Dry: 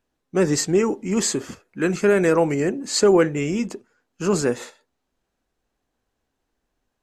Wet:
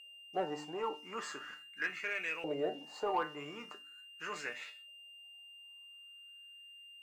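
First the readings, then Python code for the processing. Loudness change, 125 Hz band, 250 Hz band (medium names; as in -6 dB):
-18.5 dB, -29.0 dB, -25.0 dB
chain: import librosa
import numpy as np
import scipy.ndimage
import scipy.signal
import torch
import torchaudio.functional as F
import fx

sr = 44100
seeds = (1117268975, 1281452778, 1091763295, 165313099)

y = fx.comb_fb(x, sr, f0_hz=150.0, decay_s=0.24, harmonics='all', damping=0.0, mix_pct=80)
y = fx.rider(y, sr, range_db=4, speed_s=0.5)
y = fx.filter_lfo_bandpass(y, sr, shape='saw_up', hz=0.41, low_hz=570.0, high_hz=2800.0, q=4.8)
y = y + 10.0 ** (-59.0 / 20.0) * np.sin(2.0 * np.pi * 2800.0 * np.arange(len(y)) / sr)
y = fx.hum_notches(y, sr, base_hz=50, count=6)
y = fx.leveller(y, sr, passes=1)
y = y * 10.0 ** (4.5 / 20.0)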